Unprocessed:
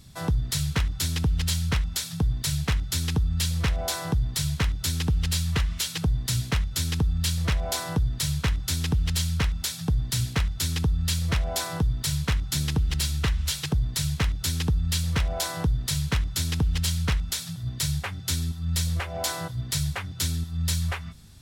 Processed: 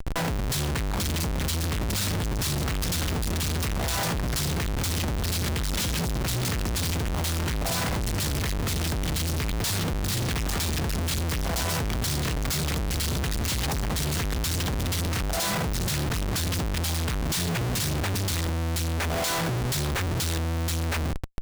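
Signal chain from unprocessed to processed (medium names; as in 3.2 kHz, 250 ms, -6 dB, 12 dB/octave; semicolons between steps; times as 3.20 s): ever faster or slower copies 766 ms, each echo +3 st, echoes 3, each echo -6 dB; Schmitt trigger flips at -41 dBFS; trim -2 dB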